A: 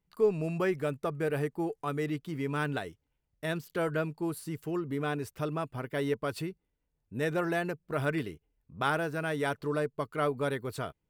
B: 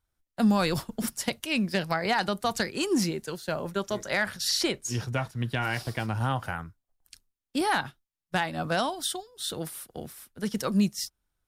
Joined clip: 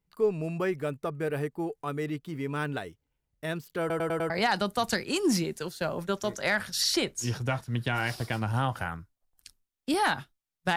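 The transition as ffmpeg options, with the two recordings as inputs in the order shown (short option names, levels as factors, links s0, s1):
-filter_complex "[0:a]apad=whole_dur=10.76,atrim=end=10.76,asplit=5[s0][s1][s2][s3][s4];[s0]atrim=end=3.902[s5];[s1]atrim=start=3.798:end=3.902[s6];[s2]atrim=start=3.798:end=3.902[s7];[s3]atrim=start=3.798:end=3.902[s8];[s4]atrim=start=3.798:end=3.902[s9];[1:a]atrim=start=1.968:end=8.43[s10];[s5][s6]acrossfade=d=0.004:c1=hsin:c2=hsin[s11];[s11][s7]acrossfade=d=0.004:c1=hsin:c2=hsin[s12];[s12][s8]acrossfade=d=0.004:c1=hsin:c2=hsin[s13];[s13][s9]acrossfade=d=0.004:c1=hsin:c2=hsin[s14];[s14][s10]acrossfade=d=0.004:c1=hsin:c2=hsin"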